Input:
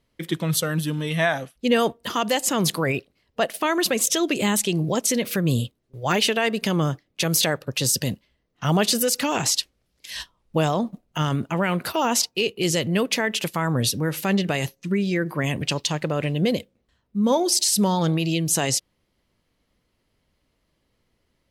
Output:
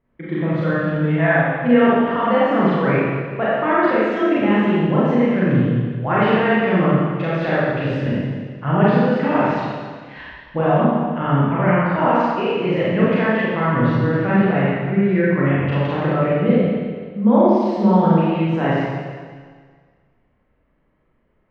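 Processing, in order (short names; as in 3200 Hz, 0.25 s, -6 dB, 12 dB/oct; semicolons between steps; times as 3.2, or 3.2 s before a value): LPF 2000 Hz 24 dB/oct; Schroeder reverb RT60 1.7 s, combs from 29 ms, DRR -9 dB; gain -2 dB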